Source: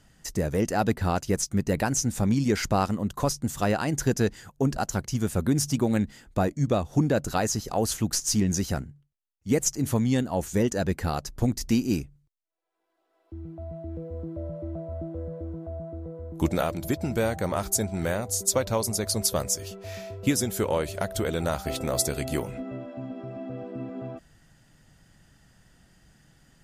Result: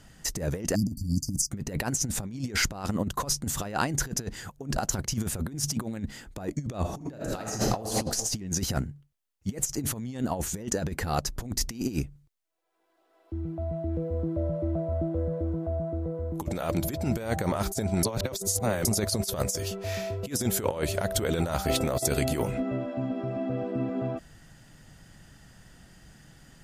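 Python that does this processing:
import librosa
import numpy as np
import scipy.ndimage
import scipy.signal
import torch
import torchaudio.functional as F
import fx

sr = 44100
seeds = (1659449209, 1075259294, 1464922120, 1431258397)

y = fx.spec_erase(x, sr, start_s=0.75, length_s=0.75, low_hz=310.0, high_hz=4500.0)
y = fx.reverb_throw(y, sr, start_s=6.8, length_s=1.11, rt60_s=0.96, drr_db=0.5)
y = fx.edit(y, sr, fx.reverse_span(start_s=18.03, length_s=0.82), tone=tone)
y = fx.over_compress(y, sr, threshold_db=-29.0, ratio=-0.5)
y = y * librosa.db_to_amplitude(1.5)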